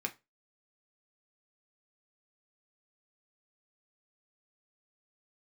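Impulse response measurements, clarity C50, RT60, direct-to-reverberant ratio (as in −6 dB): 19.0 dB, 0.25 s, 3.0 dB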